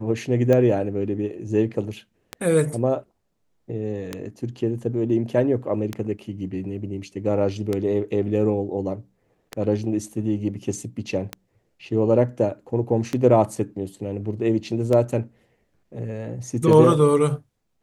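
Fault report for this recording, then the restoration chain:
scratch tick 33 1/3 rpm −11 dBFS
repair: click removal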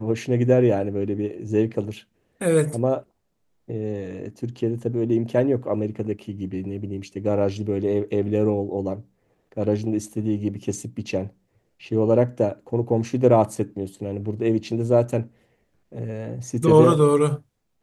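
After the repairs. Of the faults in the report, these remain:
none of them is left

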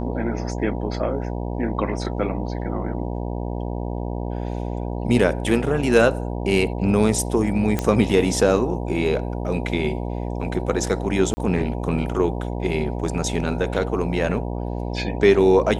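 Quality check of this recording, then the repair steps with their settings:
mains buzz 60 Hz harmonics 16 −27 dBFS
0:07.79: click −8 dBFS
0:11.34–0:11.37: drop-out 30 ms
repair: click removal
hum removal 60 Hz, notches 16
repair the gap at 0:11.34, 30 ms

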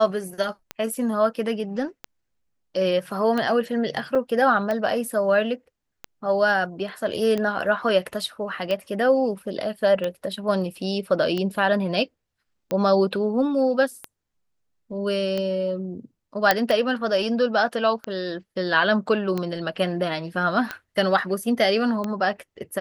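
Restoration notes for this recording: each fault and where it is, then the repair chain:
scratch tick 45 rpm −14 dBFS
0:04.15: drop-out 4.4 ms
0:16.51: click −2 dBFS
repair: click removal
repair the gap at 0:04.15, 4.4 ms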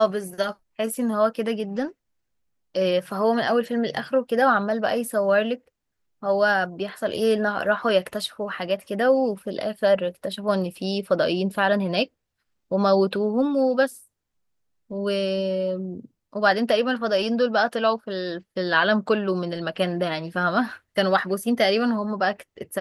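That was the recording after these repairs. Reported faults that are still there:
none of them is left

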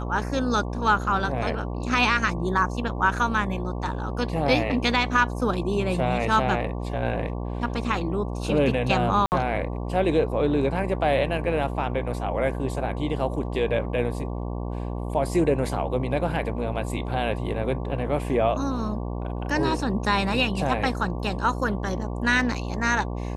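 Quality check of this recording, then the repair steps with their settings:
mains buzz 60 Hz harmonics 19 −30 dBFS
0:09.26–0:09.32: drop-out 59 ms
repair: hum removal 60 Hz, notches 19
repair the gap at 0:09.26, 59 ms

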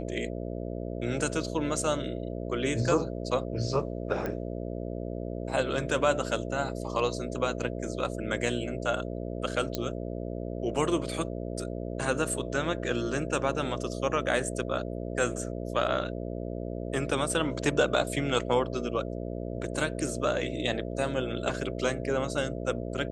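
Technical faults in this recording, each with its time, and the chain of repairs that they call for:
mains buzz 60 Hz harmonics 11 −35 dBFS
0:04.26: click −20 dBFS
0:09.75: click −15 dBFS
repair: click removal
hum removal 60 Hz, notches 11

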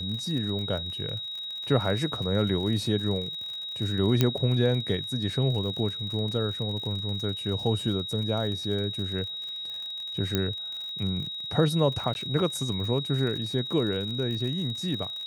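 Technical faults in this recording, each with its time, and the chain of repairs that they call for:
surface crackle 55 per second −34 dBFS
whistle 3,800 Hz −33 dBFS
0:04.21: click −8 dBFS
0:10.35: click −10 dBFS
0:12.14–0:12.15: drop-out 11 ms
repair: click removal
notch filter 3,800 Hz, Q 30
repair the gap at 0:12.14, 11 ms

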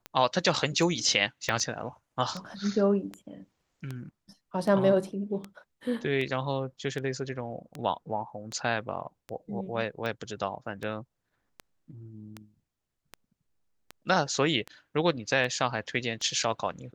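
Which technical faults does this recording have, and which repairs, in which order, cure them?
scratch tick 78 rpm −22 dBFS
0:01.49: click −14 dBFS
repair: click removal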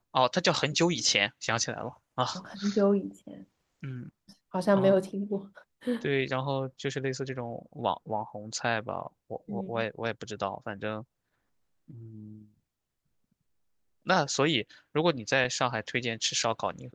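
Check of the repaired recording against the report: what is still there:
0:01.49: click

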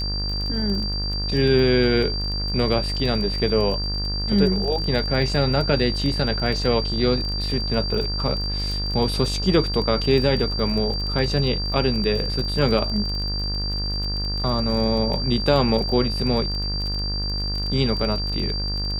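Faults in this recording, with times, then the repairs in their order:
mains buzz 50 Hz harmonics 38 −27 dBFS
surface crackle 22 per second −27 dBFS
whistle 4,700 Hz −27 dBFS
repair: click removal
notch filter 4,700 Hz, Q 30
hum removal 50 Hz, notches 38

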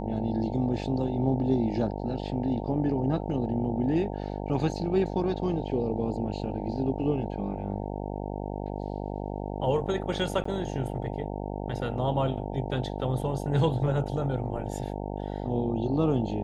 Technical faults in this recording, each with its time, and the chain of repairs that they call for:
mains buzz 50 Hz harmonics 18 −34 dBFS
0:10.44–0:10.45: drop-out 14 ms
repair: hum removal 50 Hz, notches 18
repair the gap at 0:10.44, 14 ms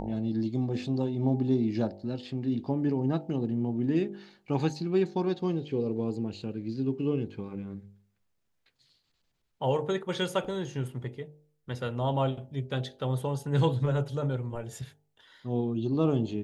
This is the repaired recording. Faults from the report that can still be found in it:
none of them is left

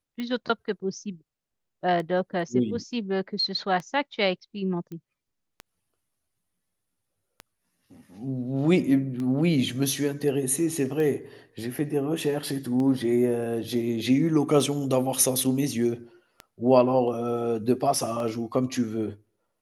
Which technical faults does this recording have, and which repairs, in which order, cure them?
scratch tick 33 1/3 rpm −21 dBFS
0:04.92: click −27 dBFS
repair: click removal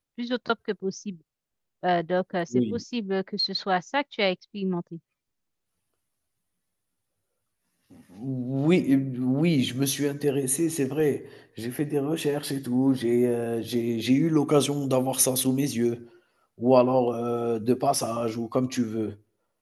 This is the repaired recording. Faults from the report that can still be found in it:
none of them is left

